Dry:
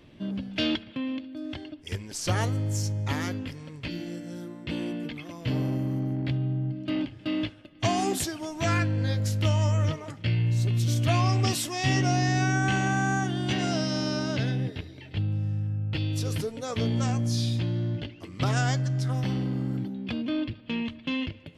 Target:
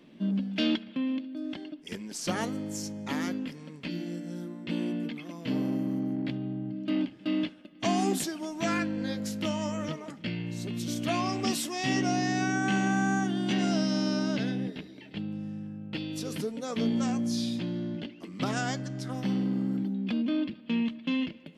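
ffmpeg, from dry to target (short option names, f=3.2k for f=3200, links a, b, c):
-af "lowshelf=f=140:t=q:w=3:g=-11.5,volume=-3dB"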